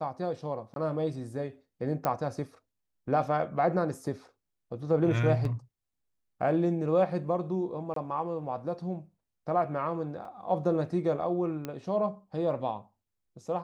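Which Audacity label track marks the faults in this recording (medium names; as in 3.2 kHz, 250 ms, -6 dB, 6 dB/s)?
0.740000	0.760000	dropout 22 ms
2.050000	2.050000	pop -16 dBFS
5.450000	5.450000	dropout 2.4 ms
7.940000	7.960000	dropout 23 ms
10.250000	10.250000	dropout 3.1 ms
11.650000	11.650000	pop -21 dBFS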